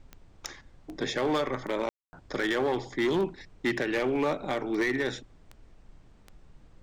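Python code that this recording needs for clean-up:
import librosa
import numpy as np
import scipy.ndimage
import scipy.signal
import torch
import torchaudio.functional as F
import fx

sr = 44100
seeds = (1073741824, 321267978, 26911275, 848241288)

y = fx.fix_declip(x, sr, threshold_db=-22.0)
y = fx.fix_declick_ar(y, sr, threshold=10.0)
y = fx.fix_ambience(y, sr, seeds[0], print_start_s=5.78, print_end_s=6.28, start_s=1.89, end_s=2.13)
y = fx.noise_reduce(y, sr, print_start_s=5.78, print_end_s=6.28, reduce_db=20.0)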